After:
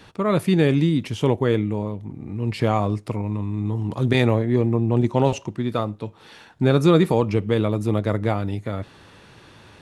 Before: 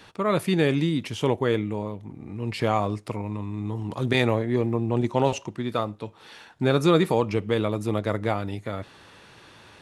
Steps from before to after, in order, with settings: bass shelf 350 Hz +7 dB

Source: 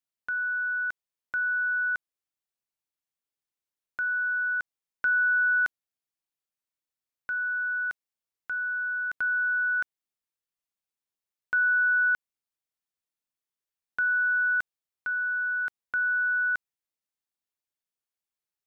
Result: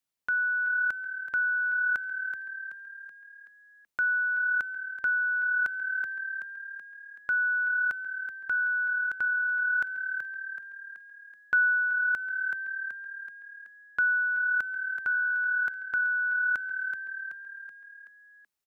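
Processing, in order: frequency-shifting echo 378 ms, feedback 51%, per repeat +37 Hz, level -11.5 dB; gain riding within 5 dB 0.5 s

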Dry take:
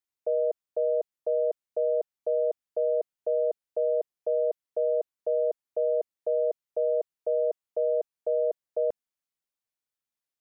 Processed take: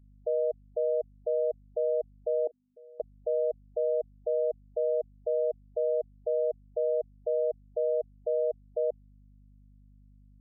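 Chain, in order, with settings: hum 50 Hz, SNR 26 dB; spectral gate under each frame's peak -20 dB strong; 2.47–3.00 s: vowel filter i; trim -2 dB

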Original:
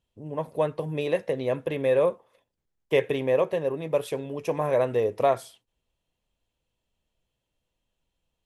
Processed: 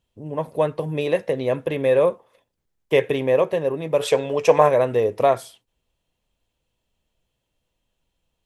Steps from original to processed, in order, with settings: time-frequency box 4.01–4.69 s, 430–8400 Hz +9 dB; trim +4.5 dB

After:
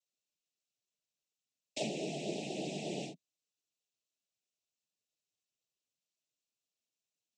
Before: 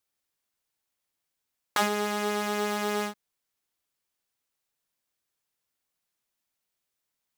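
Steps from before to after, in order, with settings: noise-vocoded speech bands 12; Chebyshev band-stop 680–2500 Hz, order 3; trim -7 dB

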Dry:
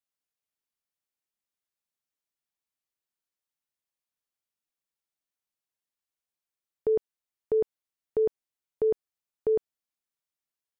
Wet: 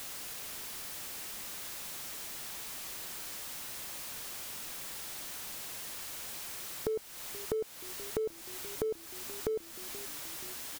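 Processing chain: jump at every zero crossing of -37.5 dBFS; compression 5:1, threshold -37 dBFS, peak gain reduction 14 dB; frequency-shifting echo 478 ms, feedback 61%, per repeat -35 Hz, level -16.5 dB; trim +3.5 dB

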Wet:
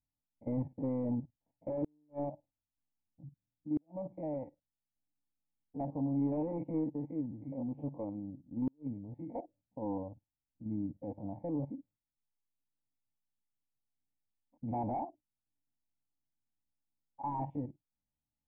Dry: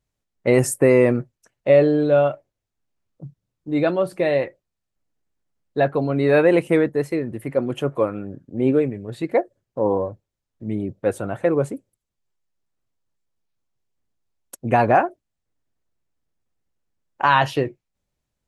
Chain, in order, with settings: spectrogram pixelated in time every 50 ms; saturation -12 dBFS, distortion -15 dB; static phaser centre 1.4 kHz, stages 6; in parallel at -7.5 dB: integer overflow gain 17.5 dB; on the sum: cascade formant filter u; inverted gate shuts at -24 dBFS, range -41 dB

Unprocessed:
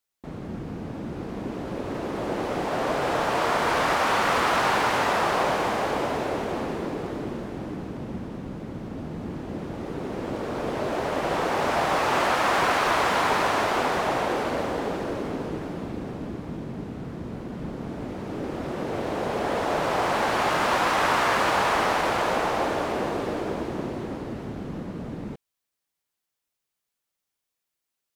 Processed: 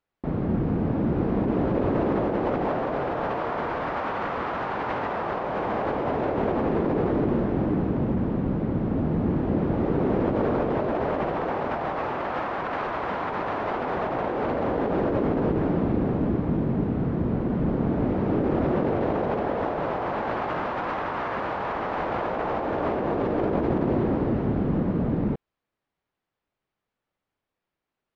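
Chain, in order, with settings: tape spacing loss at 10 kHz 41 dB; compressor with a negative ratio -33 dBFS, ratio -1; trim +7.5 dB

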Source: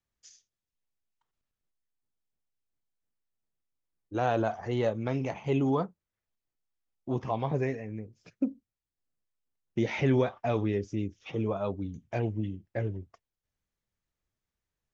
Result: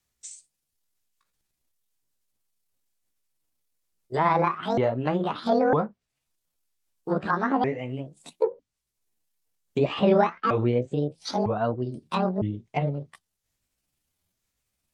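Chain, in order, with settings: sawtooth pitch modulation +11.5 st, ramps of 955 ms; treble shelf 3.5 kHz +10 dB; low-pass that closes with the level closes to 1.8 kHz, closed at -28 dBFS; trim +6.5 dB

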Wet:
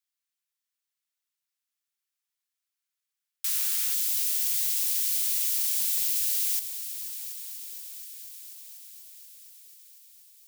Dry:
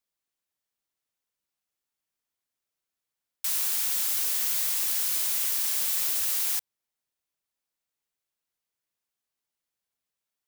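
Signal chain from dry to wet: Bessel high-pass 1.6 kHz, order 8, from 3.94 s 2.9 kHz; multi-head delay 242 ms, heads all three, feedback 72%, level -17.5 dB

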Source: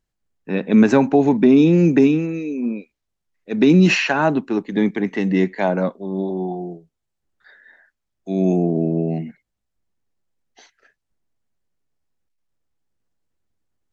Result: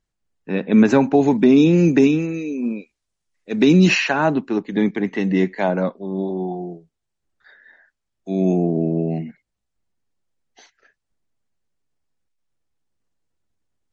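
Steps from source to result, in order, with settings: 1.14–3.89 s: treble shelf 4.1 kHz +8 dB; MP3 40 kbps 44.1 kHz

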